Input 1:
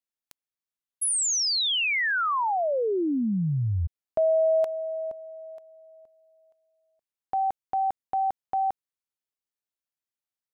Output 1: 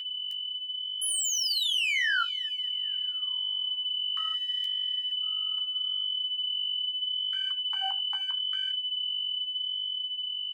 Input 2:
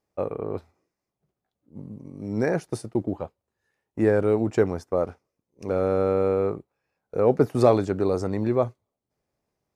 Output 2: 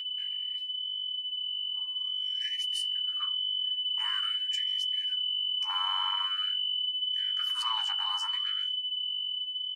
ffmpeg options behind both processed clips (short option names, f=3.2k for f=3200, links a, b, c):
-filter_complex "[0:a]aeval=exprs='if(lt(val(0),0),0.708*val(0),val(0))':c=same,alimiter=limit=-15.5dB:level=0:latency=1:release=35,acrossover=split=330|1900[a][b][c];[b]acompressor=threshold=-30dB:ratio=6:attack=0.38:release=39:knee=2.83:detection=peak[d];[a][d][c]amix=inputs=3:normalize=0,equalizer=f=73:w=0.61:g=-3.5,asoftclip=type=tanh:threshold=-26dB,lowshelf=f=760:t=q:w=3:g=-9,asplit=2[e][f];[f]adelay=80,highpass=300,lowpass=3.4k,asoftclip=type=hard:threshold=-31.5dB,volume=-19dB[g];[e][g]amix=inputs=2:normalize=0,aeval=exprs='val(0)+0.0282*sin(2*PI*3000*n/s)':c=same,flanger=delay=9.1:depth=6.8:regen=-37:speed=0.79:shape=sinusoidal,dynaudnorm=f=950:g=5:m=4dB,afftfilt=real='re*gte(b*sr/1024,740*pow(1800/740,0.5+0.5*sin(2*PI*0.47*pts/sr)))':imag='im*gte(b*sr/1024,740*pow(1800/740,0.5+0.5*sin(2*PI*0.47*pts/sr)))':win_size=1024:overlap=0.75,volume=3dB"